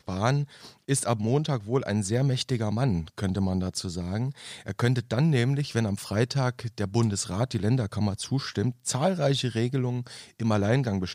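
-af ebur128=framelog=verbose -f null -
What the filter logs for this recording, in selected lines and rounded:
Integrated loudness:
  I:         -27.2 LUFS
  Threshold: -37.3 LUFS
Loudness range:
  LRA:         1.3 LU
  Threshold: -47.4 LUFS
  LRA low:   -28.1 LUFS
  LRA high:  -26.8 LUFS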